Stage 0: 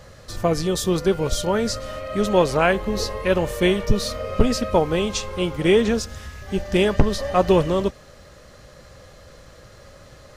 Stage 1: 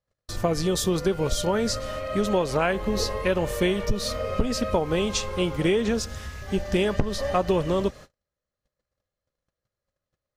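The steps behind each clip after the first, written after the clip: gate -39 dBFS, range -42 dB; compression 6:1, threshold -19 dBFS, peak gain reduction 11 dB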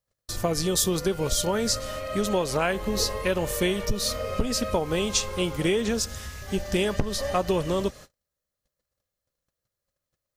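treble shelf 5.1 kHz +11 dB; trim -2 dB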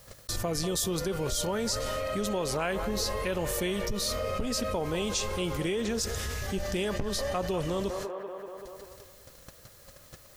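feedback echo behind a band-pass 193 ms, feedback 36%, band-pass 850 Hz, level -11.5 dB; level flattener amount 70%; trim -8.5 dB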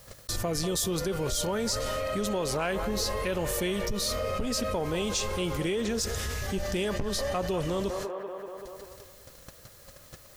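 saturation -19.5 dBFS, distortion -26 dB; trim +1.5 dB

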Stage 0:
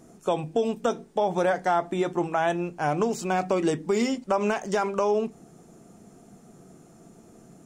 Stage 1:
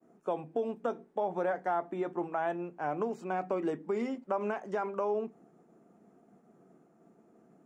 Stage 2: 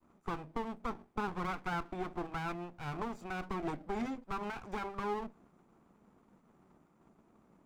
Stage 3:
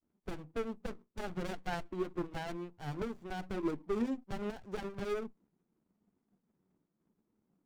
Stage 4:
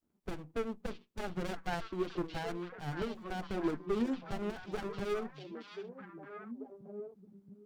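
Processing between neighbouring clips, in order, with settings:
expander -49 dBFS; three-band isolator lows -20 dB, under 170 Hz, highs -17 dB, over 2.2 kHz; trim -7.5 dB
comb filter that takes the minimum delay 0.83 ms; trim -2 dB
expander on every frequency bin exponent 1.5; sliding maximum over 33 samples; trim +5.5 dB
repeats whose band climbs or falls 624 ms, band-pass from 3.7 kHz, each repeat -1.4 oct, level -2 dB; trim +1 dB

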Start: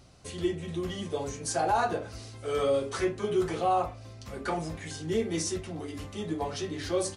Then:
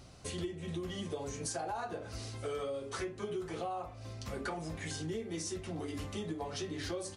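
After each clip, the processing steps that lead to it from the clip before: compression 10:1, threshold -37 dBFS, peak gain reduction 15.5 dB; trim +1.5 dB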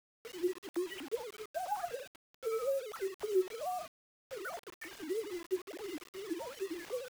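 formants replaced by sine waves; word length cut 8-bit, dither none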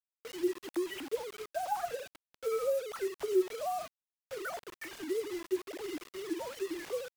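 vibrato 1.4 Hz 6.1 cents; trim +3 dB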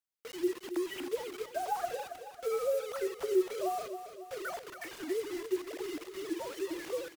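feedback delay 275 ms, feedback 51%, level -10.5 dB

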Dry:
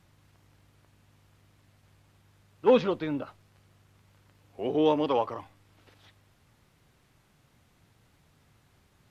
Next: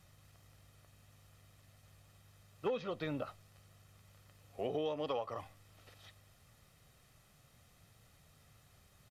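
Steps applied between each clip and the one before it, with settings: treble shelf 4.8 kHz +7.5 dB; comb 1.6 ms, depth 45%; compression 16:1, threshold -30 dBFS, peak gain reduction 16 dB; trim -3 dB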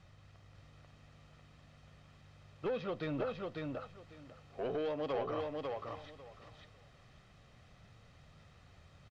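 saturation -34.5 dBFS, distortion -13 dB; distance through air 140 m; on a send: feedback delay 547 ms, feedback 18%, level -3 dB; on the sum: trim +4 dB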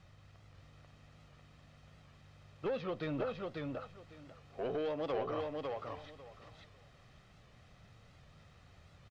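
warped record 78 rpm, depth 100 cents

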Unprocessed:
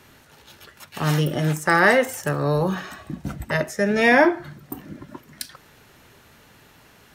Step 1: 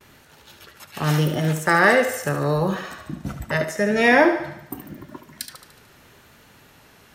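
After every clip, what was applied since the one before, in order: gate with hold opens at -44 dBFS; thinning echo 73 ms, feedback 56%, high-pass 290 Hz, level -9 dB; vibrato 0.83 Hz 28 cents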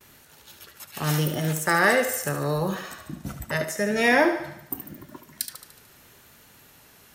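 treble shelf 6.4 kHz +12 dB; trim -4.5 dB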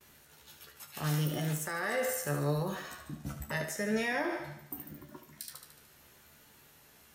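peak limiter -17.5 dBFS, peak gain reduction 11.5 dB; feedback comb 73 Hz, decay 0.16 s, harmonics all, mix 90%; trim -1.5 dB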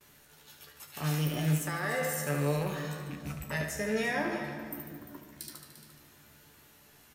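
rattle on loud lows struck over -41 dBFS, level -37 dBFS; delay 347 ms -13 dB; reverberation RT60 2.5 s, pre-delay 7 ms, DRR 7.5 dB

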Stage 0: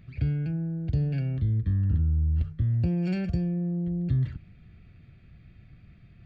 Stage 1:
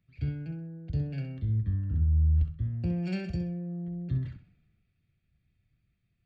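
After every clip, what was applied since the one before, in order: on a send: flutter echo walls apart 11.1 m, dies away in 0.41 s; on the sum: three bands expanded up and down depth 70%; trim -5 dB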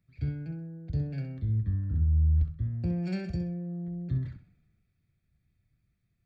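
peaking EQ 2.9 kHz -11.5 dB 0.28 oct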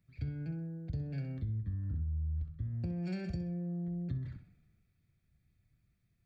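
compression 6:1, threshold -34 dBFS, peak gain reduction 12 dB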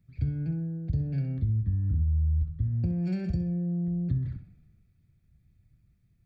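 bass shelf 340 Hz +10.5 dB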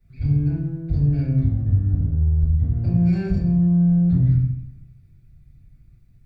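in parallel at -8.5 dB: overload inside the chain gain 32 dB; on the sum: reverberation RT60 0.55 s, pre-delay 3 ms, DRR -12 dB; trim -9 dB

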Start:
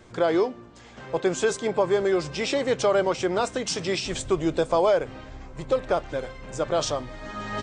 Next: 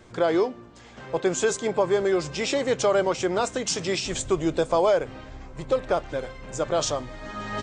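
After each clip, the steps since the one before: dynamic bell 6.9 kHz, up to +6 dB, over -52 dBFS, Q 3.9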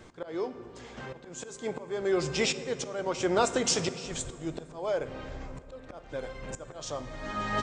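slow attack 567 ms; reverberation RT60 3.0 s, pre-delay 3 ms, DRR 11.5 dB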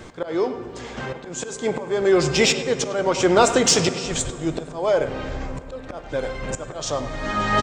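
in parallel at -9.5 dB: saturation -26 dBFS, distortion -11 dB; on the sum: speakerphone echo 100 ms, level -11 dB; trim +8.5 dB

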